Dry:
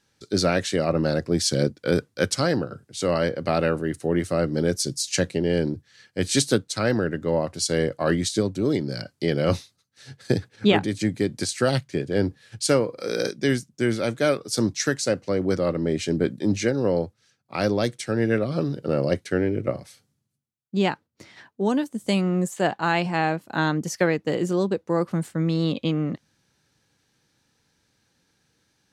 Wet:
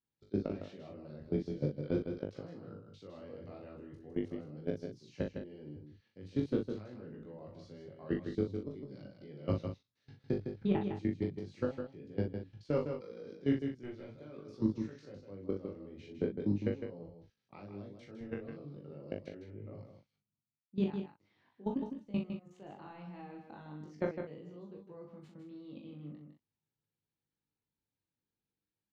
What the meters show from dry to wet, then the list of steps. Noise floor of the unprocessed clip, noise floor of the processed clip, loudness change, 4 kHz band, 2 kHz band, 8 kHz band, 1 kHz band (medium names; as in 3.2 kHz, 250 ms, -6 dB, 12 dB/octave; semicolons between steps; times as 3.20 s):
-72 dBFS, under -85 dBFS, -15.0 dB, -28.5 dB, -25.0 dB, under -40 dB, -22.0 dB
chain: de-esser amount 85%; fifteen-band graphic EQ 630 Hz -4 dB, 1.6 kHz -8 dB, 6.3 kHz +7 dB; level held to a coarse grid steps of 21 dB; chorus 0.41 Hz, delay 18.5 ms, depth 3 ms; distance through air 350 m; doubling 40 ms -5.5 dB; delay 157 ms -7 dB; trim -4 dB